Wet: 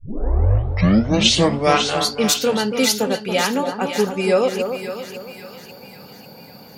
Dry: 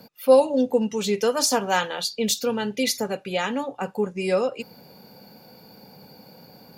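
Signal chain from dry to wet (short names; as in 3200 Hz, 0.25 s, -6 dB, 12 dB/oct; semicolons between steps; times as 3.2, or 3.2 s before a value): tape start at the beginning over 2.14 s; split-band echo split 1400 Hz, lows 0.279 s, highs 0.547 s, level -7.5 dB; gain +5.5 dB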